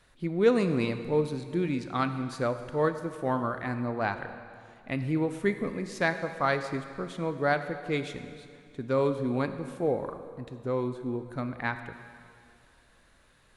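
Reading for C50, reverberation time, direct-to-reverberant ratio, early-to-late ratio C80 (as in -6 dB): 10.0 dB, 2.3 s, 9.0 dB, 10.5 dB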